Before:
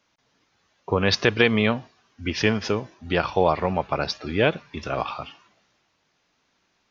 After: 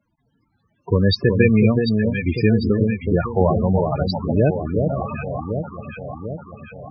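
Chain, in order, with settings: tone controls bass +8 dB, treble +2 dB; echo with dull and thin repeats by turns 0.372 s, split 1200 Hz, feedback 75%, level -4 dB; loudest bins only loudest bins 16; gain +2 dB

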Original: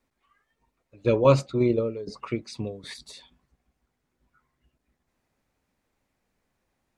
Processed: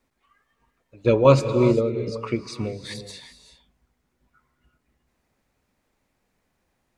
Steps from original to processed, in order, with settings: non-linear reverb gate 0.41 s rising, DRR 9 dB; gain +3.5 dB

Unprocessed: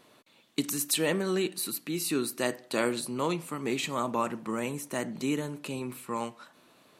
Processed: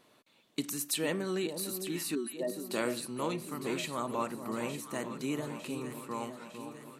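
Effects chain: 2.15–2.66 spectral contrast raised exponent 2.7; echo with dull and thin repeats by turns 0.452 s, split 1000 Hz, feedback 76%, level -8 dB; gain -5 dB

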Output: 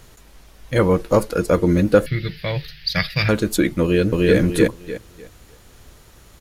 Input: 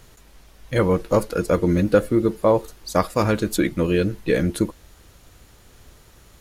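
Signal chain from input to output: 2.06–3.29 EQ curve 110 Hz 0 dB, 150 Hz +13 dB, 220 Hz -16 dB, 390 Hz -16 dB, 660 Hz -12 dB, 1100 Hz -16 dB, 1800 Hz +12 dB, 4800 Hz +11 dB, 7600 Hz -26 dB, 13000 Hz -4 dB; 3.82–4.37 echo throw 0.3 s, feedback 25%, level 0 dB; gain +2.5 dB

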